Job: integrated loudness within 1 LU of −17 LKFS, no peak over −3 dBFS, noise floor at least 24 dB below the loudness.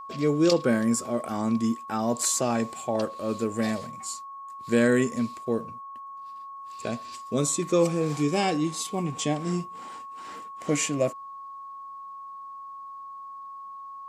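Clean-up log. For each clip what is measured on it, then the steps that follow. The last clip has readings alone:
interfering tone 1,100 Hz; level of the tone −38 dBFS; integrated loudness −26.5 LKFS; sample peak −9.5 dBFS; target loudness −17.0 LKFS
→ notch filter 1,100 Hz, Q 30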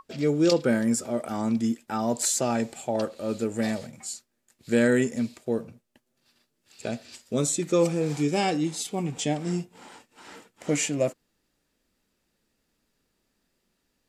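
interfering tone none found; integrated loudness −26.5 LKFS; sample peak −9.5 dBFS; target loudness −17.0 LKFS
→ level +9.5 dB
brickwall limiter −3 dBFS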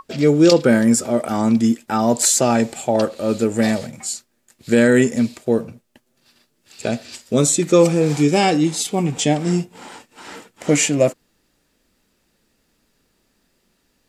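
integrated loudness −17.5 LKFS; sample peak −3.0 dBFS; background noise floor −67 dBFS

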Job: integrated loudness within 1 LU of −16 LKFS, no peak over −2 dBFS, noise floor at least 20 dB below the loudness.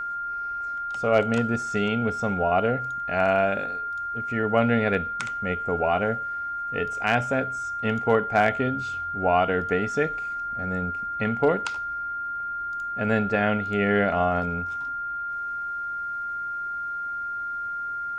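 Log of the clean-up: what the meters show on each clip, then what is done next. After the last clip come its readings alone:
crackle rate 28 per second; interfering tone 1,400 Hz; level of the tone −28 dBFS; integrated loudness −25.5 LKFS; sample peak −8.5 dBFS; target loudness −16.0 LKFS
→ click removal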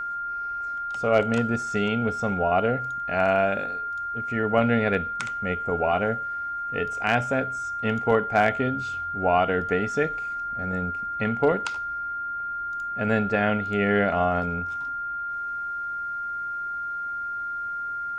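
crackle rate 0 per second; interfering tone 1,400 Hz; level of the tone −28 dBFS
→ notch filter 1,400 Hz, Q 30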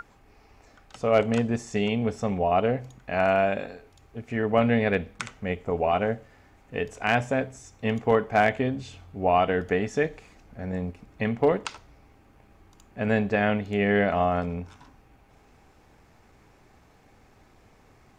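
interfering tone none found; integrated loudness −26.0 LKFS; sample peak −9.0 dBFS; target loudness −16.0 LKFS
→ level +10 dB
brickwall limiter −2 dBFS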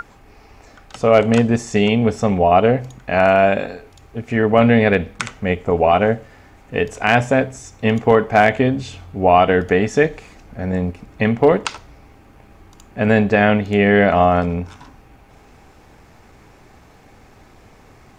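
integrated loudness −16.5 LKFS; sample peak −2.0 dBFS; background noise floor −48 dBFS

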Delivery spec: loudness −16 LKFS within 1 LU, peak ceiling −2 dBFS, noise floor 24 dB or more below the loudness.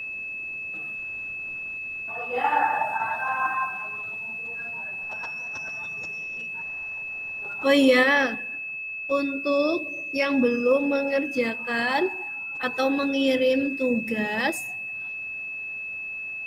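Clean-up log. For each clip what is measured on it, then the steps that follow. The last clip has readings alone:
interfering tone 2,600 Hz; level of the tone −31 dBFS; integrated loudness −25.5 LKFS; sample peak −9.0 dBFS; target loudness −16.0 LKFS
→ notch filter 2,600 Hz, Q 30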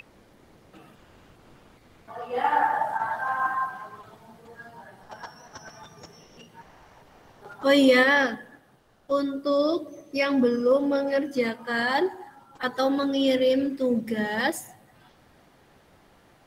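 interfering tone none found; integrated loudness −24.5 LKFS; sample peak −9.0 dBFS; target loudness −16.0 LKFS
→ level +8.5 dB
brickwall limiter −2 dBFS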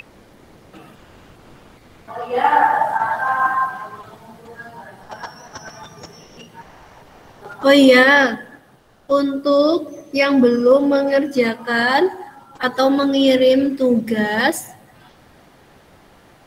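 integrated loudness −16.0 LKFS; sample peak −2.0 dBFS; background noise floor −50 dBFS

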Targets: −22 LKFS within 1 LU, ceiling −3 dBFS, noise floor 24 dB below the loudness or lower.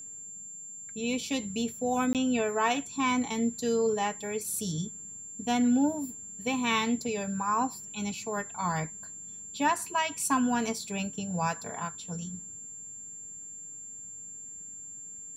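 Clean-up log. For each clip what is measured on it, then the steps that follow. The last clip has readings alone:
number of dropouts 1; longest dropout 18 ms; interfering tone 7,300 Hz; level of the tone −41 dBFS; integrated loudness −31.0 LKFS; sample peak −14.5 dBFS; target loudness −22.0 LKFS
→ repair the gap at 0:02.13, 18 ms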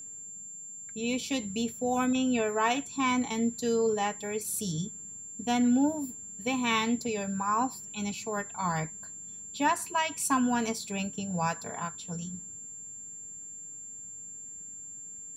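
number of dropouts 0; interfering tone 7,300 Hz; level of the tone −41 dBFS
→ notch filter 7,300 Hz, Q 30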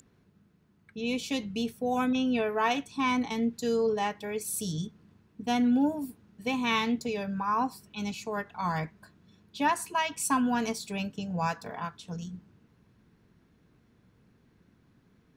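interfering tone none found; integrated loudness −30.5 LKFS; sample peak −15.0 dBFS; target loudness −22.0 LKFS
→ level +8.5 dB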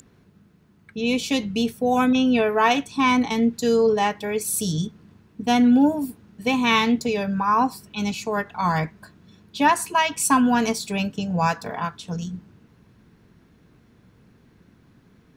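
integrated loudness −22.0 LKFS; sample peak −6.5 dBFS; background noise floor −57 dBFS

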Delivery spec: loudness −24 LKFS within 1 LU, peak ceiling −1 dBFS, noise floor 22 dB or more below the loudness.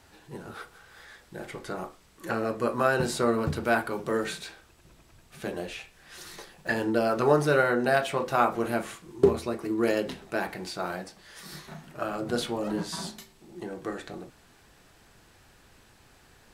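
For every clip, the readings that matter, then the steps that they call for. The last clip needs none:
number of dropouts 1; longest dropout 4.1 ms; integrated loudness −28.5 LKFS; sample peak −7.0 dBFS; target loudness −24.0 LKFS
→ repair the gap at 0:06.67, 4.1 ms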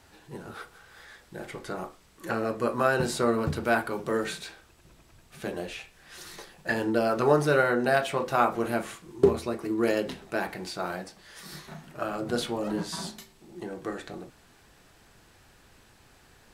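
number of dropouts 0; integrated loudness −28.5 LKFS; sample peak −7.0 dBFS; target loudness −24.0 LKFS
→ level +4.5 dB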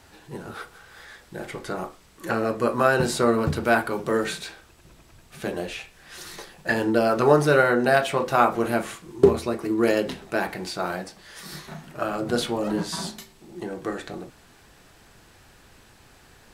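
integrated loudness −24.0 LKFS; sample peak −2.5 dBFS; background noise floor −54 dBFS

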